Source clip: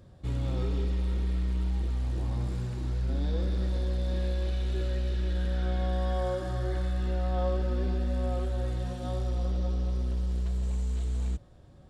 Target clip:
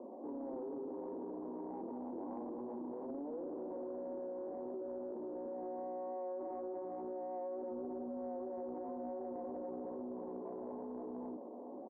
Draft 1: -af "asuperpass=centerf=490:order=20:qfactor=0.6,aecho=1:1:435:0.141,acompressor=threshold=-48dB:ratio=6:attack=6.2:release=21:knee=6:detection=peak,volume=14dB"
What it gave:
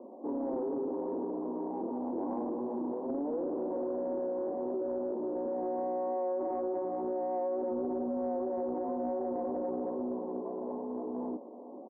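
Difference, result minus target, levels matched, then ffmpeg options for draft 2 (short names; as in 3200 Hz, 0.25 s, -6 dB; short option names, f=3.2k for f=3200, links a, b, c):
compressor: peak gain reduction -9 dB
-af "asuperpass=centerf=490:order=20:qfactor=0.6,aecho=1:1:435:0.141,acompressor=threshold=-59dB:ratio=6:attack=6.2:release=21:knee=6:detection=peak,volume=14dB"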